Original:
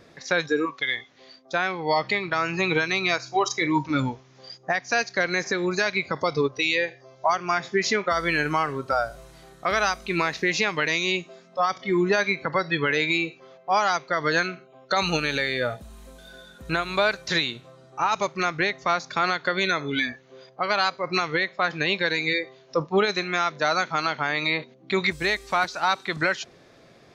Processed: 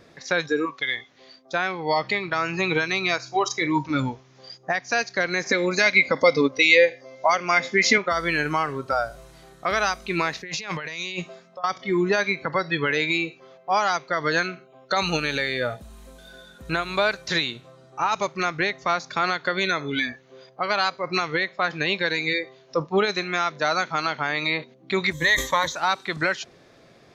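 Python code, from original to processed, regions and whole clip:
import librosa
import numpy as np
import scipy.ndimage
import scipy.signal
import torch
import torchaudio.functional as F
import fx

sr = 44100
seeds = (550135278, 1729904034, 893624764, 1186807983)

y = fx.chain(x, sr, fx.tilt_shelf(db=-5.0, hz=940.0),
    fx.small_body(hz=(260.0, 510.0, 2100.0), ring_ms=40, db=14), at=(5.49, 7.98))
y = fx.chain(y, sr, fx.peak_eq(hz=310.0, db=-7.0, octaves=0.71),
    fx.over_compress(threshold_db=-32.0, ratio=-1.0),
    fx.band_widen(depth_pct=70), at=(10.39, 11.64))
y = fx.chain(y, sr, fx.ripple_eq(per_octave=1.1, db=16),
    fx.sustainer(db_per_s=120.0), at=(25.13, 25.76))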